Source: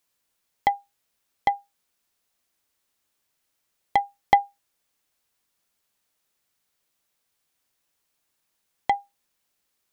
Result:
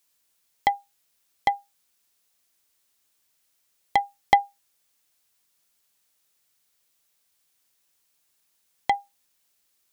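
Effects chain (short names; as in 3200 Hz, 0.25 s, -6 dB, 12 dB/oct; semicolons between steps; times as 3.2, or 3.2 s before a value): high shelf 2700 Hz +7.5 dB; gain -1 dB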